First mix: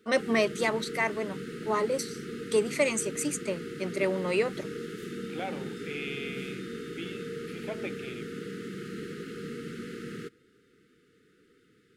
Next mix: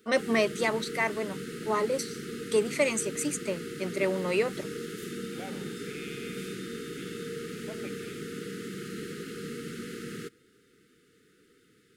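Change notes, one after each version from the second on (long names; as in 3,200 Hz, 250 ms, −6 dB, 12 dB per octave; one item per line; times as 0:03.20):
second voice −7.5 dB
background: add high-shelf EQ 5,000 Hz +10 dB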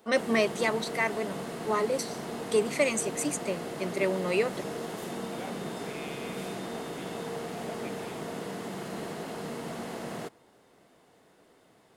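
background: remove linear-phase brick-wall band-stop 500–1,200 Hz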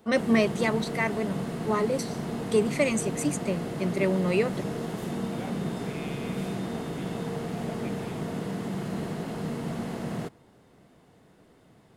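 master: add bass and treble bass +12 dB, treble −2 dB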